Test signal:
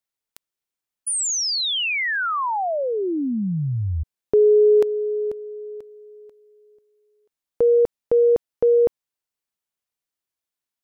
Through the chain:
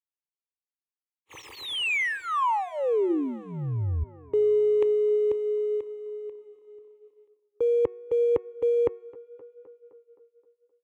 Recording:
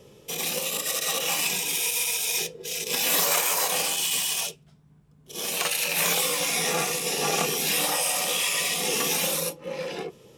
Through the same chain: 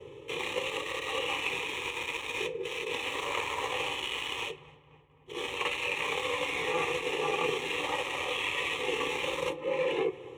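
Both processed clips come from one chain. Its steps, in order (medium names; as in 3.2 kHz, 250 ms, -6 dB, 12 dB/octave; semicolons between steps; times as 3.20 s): dead-time distortion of 0.063 ms; reverse; compression 6:1, threshold -29 dBFS; reverse; high-pass 72 Hz; distance through air 120 m; static phaser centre 1 kHz, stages 8; de-hum 366.7 Hz, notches 7; tape echo 260 ms, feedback 82%, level -20.5 dB, low-pass 2.6 kHz; expander -57 dBFS, range -16 dB; trim +7.5 dB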